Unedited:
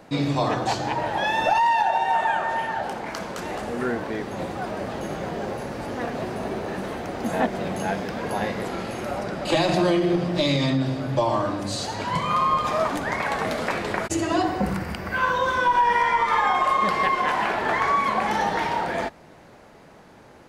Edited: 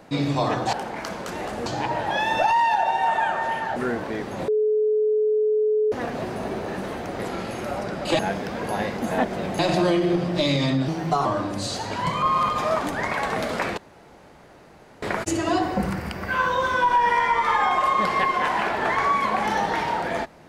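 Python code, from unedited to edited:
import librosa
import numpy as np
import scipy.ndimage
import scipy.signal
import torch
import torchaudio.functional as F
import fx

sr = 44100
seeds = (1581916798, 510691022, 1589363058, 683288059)

y = fx.edit(x, sr, fx.move(start_s=2.83, length_s=0.93, to_s=0.73),
    fx.bleep(start_s=4.48, length_s=1.44, hz=428.0, db=-17.5),
    fx.swap(start_s=7.19, length_s=0.62, other_s=8.59, other_length_s=1.0),
    fx.speed_span(start_s=10.88, length_s=0.46, speed=1.23),
    fx.reverse_span(start_s=12.31, length_s=0.26),
    fx.insert_room_tone(at_s=13.86, length_s=1.25), tone=tone)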